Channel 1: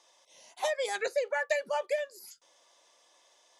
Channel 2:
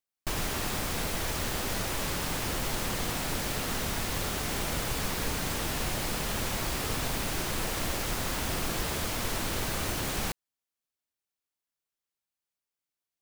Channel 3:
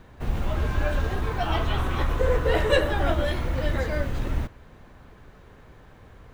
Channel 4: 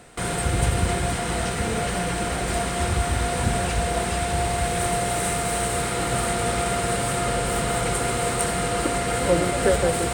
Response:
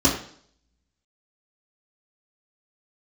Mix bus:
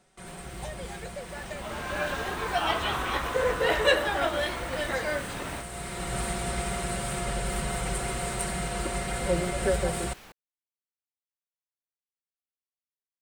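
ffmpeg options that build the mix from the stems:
-filter_complex "[0:a]volume=-11dB[a];[1:a]bass=f=250:g=-7,treble=f=4k:g=-8,acrossover=split=1500[b][c];[b]aeval=exprs='val(0)*(1-0.5/2+0.5/2*cos(2*PI*2.6*n/s))':c=same[d];[c]aeval=exprs='val(0)*(1-0.5/2-0.5/2*cos(2*PI*2.6*n/s))':c=same[e];[d][e]amix=inputs=2:normalize=0,volume=-12dB[f];[2:a]highpass=f=770:p=1,dynaudnorm=f=450:g=3:m=9.5dB,adelay=1150,volume=-5.5dB[g];[3:a]asubboost=boost=2:cutoff=130,aecho=1:1:5.3:0.76,volume=-9dB,afade=t=in:st=5.6:d=0.6:silence=0.316228[h];[a][f][g][h]amix=inputs=4:normalize=0"

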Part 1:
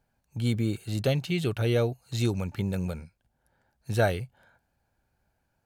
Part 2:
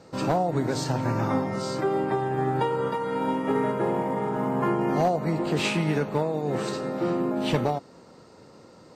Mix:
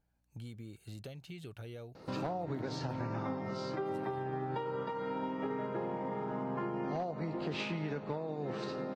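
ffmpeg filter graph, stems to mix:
-filter_complex "[0:a]acompressor=threshold=-34dB:ratio=12,aeval=exprs='val(0)+0.000316*(sin(2*PI*60*n/s)+sin(2*PI*2*60*n/s)/2+sin(2*PI*3*60*n/s)/3+sin(2*PI*4*60*n/s)/4+sin(2*PI*5*60*n/s)/5)':c=same,volume=-9dB[a];[1:a]lowpass=f=5.3k:w=0.5412,lowpass=f=5.3k:w=1.3066,adelay=1950,volume=-2.5dB[b];[a][b]amix=inputs=2:normalize=0,acompressor=threshold=-37dB:ratio=3"

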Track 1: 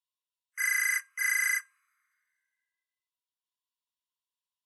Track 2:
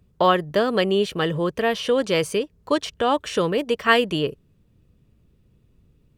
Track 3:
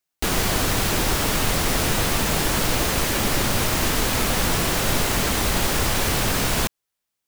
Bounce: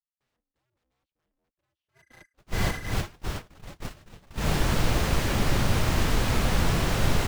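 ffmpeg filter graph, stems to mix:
-filter_complex "[0:a]adelay=1350,volume=-3.5dB[a];[1:a]bandreject=f=590:w=12,aeval=exprs='(mod(6.31*val(0)+1,2)-1)/6.31':c=same,aeval=exprs='val(0)*sgn(sin(2*PI*130*n/s))':c=same,volume=-10.5dB,asplit=2[b][c];[2:a]adelay=2150,volume=2dB[d];[c]apad=whole_len=415849[e];[d][e]sidechaincompress=threshold=-44dB:ratio=5:attack=12:release=216[f];[a][b][f]amix=inputs=3:normalize=0,agate=range=-42dB:threshold=-25dB:ratio=16:detection=peak,firequalizer=gain_entry='entry(120,0);entry(260,-6);entry(11000,-16)':delay=0.05:min_phase=1"

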